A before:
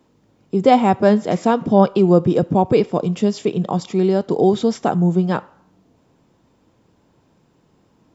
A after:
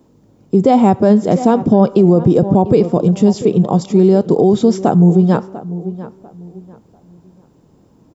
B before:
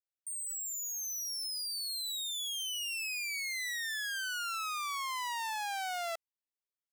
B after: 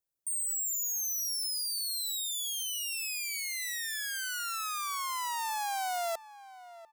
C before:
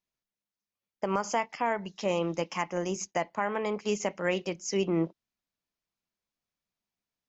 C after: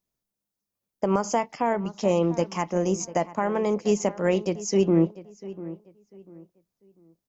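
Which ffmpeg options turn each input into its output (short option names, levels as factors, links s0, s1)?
-filter_complex "[0:a]equalizer=f=2300:w=0.44:g=-11,asplit=2[s0][s1];[s1]adelay=695,lowpass=f=2300:p=1,volume=0.158,asplit=2[s2][s3];[s3]adelay=695,lowpass=f=2300:p=1,volume=0.29,asplit=2[s4][s5];[s5]adelay=695,lowpass=f=2300:p=1,volume=0.29[s6];[s0][s2][s4][s6]amix=inputs=4:normalize=0,alimiter=level_in=3.16:limit=0.891:release=50:level=0:latency=1,volume=0.891"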